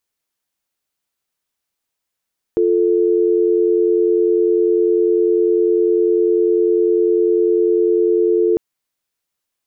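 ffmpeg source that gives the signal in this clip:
ffmpeg -f lavfi -i "aevalsrc='0.188*(sin(2*PI*350*t)+sin(2*PI*440*t))':duration=6:sample_rate=44100" out.wav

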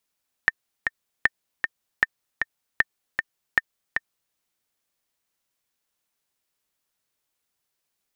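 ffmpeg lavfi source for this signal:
ffmpeg -f lavfi -i "aevalsrc='pow(10,(-4-5.5*gte(mod(t,2*60/155),60/155))/20)*sin(2*PI*1810*mod(t,60/155))*exp(-6.91*mod(t,60/155)/0.03)':duration=3.87:sample_rate=44100" out.wav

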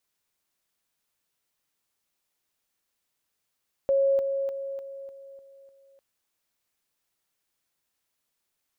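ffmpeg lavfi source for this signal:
ffmpeg -f lavfi -i "aevalsrc='pow(10,(-19-6*floor(t/0.3))/20)*sin(2*PI*548*t)':duration=2.1:sample_rate=44100" out.wav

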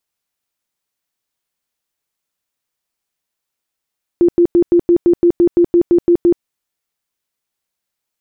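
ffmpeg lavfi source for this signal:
ffmpeg -f lavfi -i "aevalsrc='0.473*sin(2*PI*346*mod(t,0.17))*lt(mod(t,0.17),26/346)':duration=2.21:sample_rate=44100" out.wav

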